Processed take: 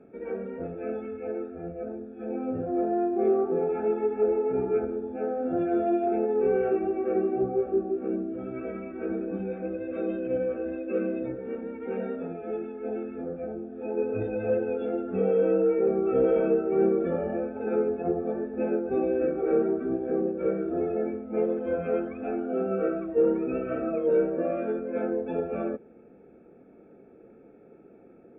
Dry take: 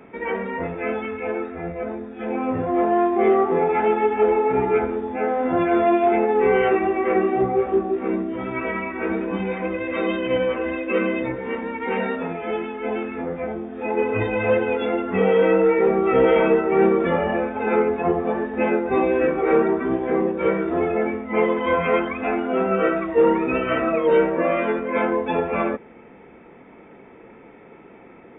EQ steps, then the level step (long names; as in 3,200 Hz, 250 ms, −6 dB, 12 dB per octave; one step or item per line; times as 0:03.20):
moving average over 44 samples
low-shelf EQ 280 Hz −9.5 dB
0.0 dB